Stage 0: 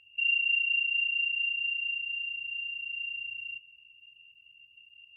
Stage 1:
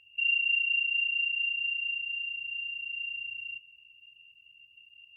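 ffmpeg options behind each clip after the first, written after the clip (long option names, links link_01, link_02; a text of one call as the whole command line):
ffmpeg -i in.wav -af "equalizer=frequency=1400:width=6.6:gain=-3.5" out.wav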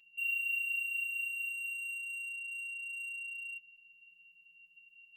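ffmpeg -i in.wav -filter_complex "[0:a]afftfilt=real='hypot(re,im)*cos(PI*b)':imag='0':win_size=1024:overlap=0.75,asplit=2[link_01][link_02];[link_02]aeval=exprs='0.0112*(abs(mod(val(0)/0.0112+3,4)-2)-1)':channel_layout=same,volume=-3.5dB[link_03];[link_01][link_03]amix=inputs=2:normalize=0,volume=-6dB" out.wav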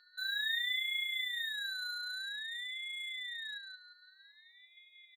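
ffmpeg -i in.wav -filter_complex "[0:a]aeval=exprs='val(0)+0.000631*sin(2*PI*3100*n/s)':channel_layout=same,asplit=2[link_01][link_02];[link_02]adelay=177,lowpass=frequency=4400:poles=1,volume=-4.5dB,asplit=2[link_03][link_04];[link_04]adelay=177,lowpass=frequency=4400:poles=1,volume=0.37,asplit=2[link_05][link_06];[link_06]adelay=177,lowpass=frequency=4400:poles=1,volume=0.37,asplit=2[link_07][link_08];[link_08]adelay=177,lowpass=frequency=4400:poles=1,volume=0.37,asplit=2[link_09][link_10];[link_10]adelay=177,lowpass=frequency=4400:poles=1,volume=0.37[link_11];[link_01][link_03][link_05][link_07][link_09][link_11]amix=inputs=6:normalize=0,aeval=exprs='val(0)*sin(2*PI*970*n/s+970*0.35/0.51*sin(2*PI*0.51*n/s))':channel_layout=same" out.wav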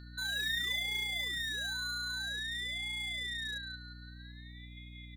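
ffmpeg -i in.wav -filter_complex "[0:a]asplit=2[link_01][link_02];[link_02]aeval=exprs='0.01*(abs(mod(val(0)/0.01+3,4)-2)-1)':channel_layout=same,volume=-3dB[link_03];[link_01][link_03]amix=inputs=2:normalize=0,aeval=exprs='val(0)+0.00398*(sin(2*PI*60*n/s)+sin(2*PI*2*60*n/s)/2+sin(2*PI*3*60*n/s)/3+sin(2*PI*4*60*n/s)/4+sin(2*PI*5*60*n/s)/5)':channel_layout=same" out.wav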